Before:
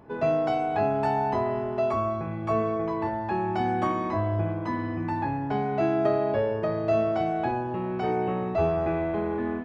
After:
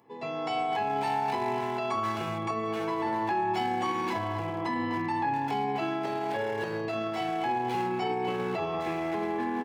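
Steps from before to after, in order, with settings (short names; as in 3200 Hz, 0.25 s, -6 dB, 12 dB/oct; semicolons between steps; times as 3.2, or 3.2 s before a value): Butterworth band-stop 1500 Hz, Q 6.6; resonator 120 Hz, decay 0.2 s, harmonics all, mix 70%; AGC gain up to 11.5 dB; HPF 95 Hz 24 dB/oct; notches 60/120/180/240/300/360 Hz; speakerphone echo 0.25 s, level -6 dB; limiter -19 dBFS, peak gain reduction 10.5 dB; tilt +2.5 dB/oct; notch comb 620 Hz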